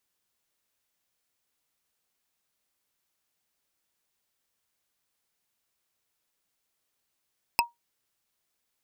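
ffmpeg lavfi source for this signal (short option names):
-f lavfi -i "aevalsrc='0.15*pow(10,-3*t/0.16)*sin(2*PI*945*t)+0.15*pow(10,-3*t/0.047)*sin(2*PI*2605.4*t)+0.15*pow(10,-3*t/0.021)*sin(2*PI*5106.8*t)+0.15*pow(10,-3*t/0.012)*sin(2*PI*8441.7*t)+0.15*pow(10,-3*t/0.007)*sin(2*PI*12606.3*t)':d=0.45:s=44100"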